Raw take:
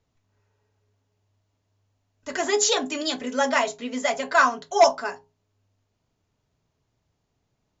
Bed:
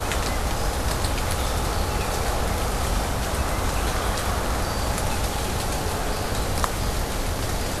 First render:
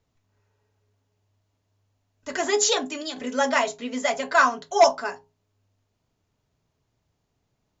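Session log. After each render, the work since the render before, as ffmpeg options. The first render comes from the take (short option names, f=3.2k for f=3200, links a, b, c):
-filter_complex "[0:a]asplit=2[a][b];[a]atrim=end=3.16,asetpts=PTS-STARTPTS,afade=t=out:st=2.71:d=0.45:silence=0.398107[c];[b]atrim=start=3.16,asetpts=PTS-STARTPTS,afade=t=in:d=0.004:c=hsin:silence=0.398107[d];[c][d]concat=n=2:v=0:a=1"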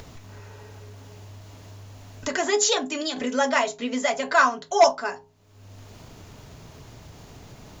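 -af "acompressor=mode=upward:threshold=-21dB:ratio=2.5"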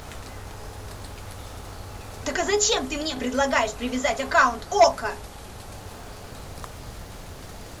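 -filter_complex "[1:a]volume=-15dB[a];[0:a][a]amix=inputs=2:normalize=0"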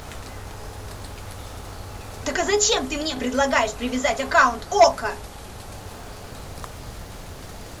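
-af "volume=2dB"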